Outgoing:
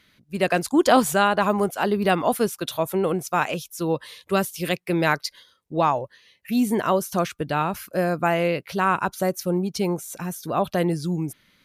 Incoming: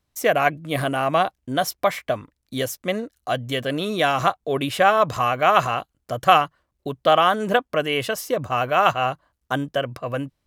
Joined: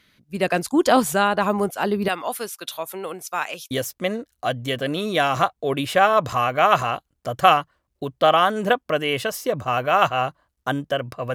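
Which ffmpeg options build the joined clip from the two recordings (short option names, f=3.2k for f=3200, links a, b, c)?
-filter_complex "[0:a]asettb=1/sr,asplit=3[a][b][c];[a]atrim=end=2.084[d];[b]atrim=start=2.08:end=3.71,asetpts=PTS-STARTPTS,afade=t=in:d=0.004:c=qsin,afade=t=out:st=1.626:d=0.004:c=qsin,highpass=f=1.1k:p=1[e];[c]atrim=start=3.706[f];[d][e]acrossfade=d=0.004:c1=hsin:c2=qsin[g];[g][f]acrossfade=d=0.004:c1=qsin:c2=hsin,apad=whole_dur=11.34,atrim=end=11.34,atrim=end=3.712[h];[1:a]atrim=start=2.548:end=10.18[i];[h][i]acrossfade=d=0.004:c1=hsin:c2=hsin"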